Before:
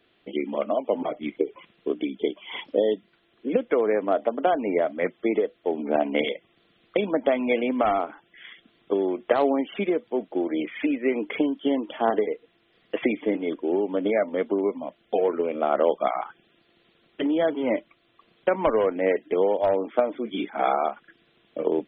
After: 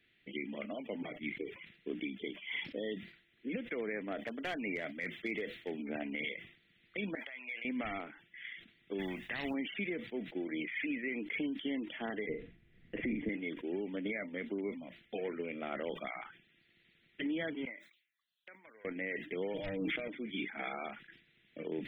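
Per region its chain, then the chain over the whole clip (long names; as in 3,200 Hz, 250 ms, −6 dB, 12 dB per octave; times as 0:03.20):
0:04.19–0:05.82: high-shelf EQ 2,700 Hz +8.5 dB + hard clipping −15 dBFS
0:07.15–0:07.65: high-pass filter 950 Hz + downward compressor 8 to 1, threshold −35 dBFS
0:08.98–0:09.53: compressing power law on the bin magnitudes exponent 0.69 + comb filter 1.1 ms, depth 39%
0:12.29–0:13.29: spectral tilt −4.5 dB per octave + double-tracking delay 45 ms −8 dB
0:17.65–0:18.85: first difference + phaser swept by the level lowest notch 300 Hz, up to 2,900 Hz, full sweep at −48 dBFS
0:19.54–0:20.08: parametric band 880 Hz −11.5 dB 2.7 octaves + comb filter 6.4 ms, depth 76% + envelope flattener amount 100%
whole clip: drawn EQ curve 160 Hz 0 dB, 600 Hz −14 dB, 1,100 Hz −16 dB, 2,000 Hz +6 dB, 3,100 Hz −2 dB; brickwall limiter −23 dBFS; level that may fall only so fast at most 110 dB per second; level −5 dB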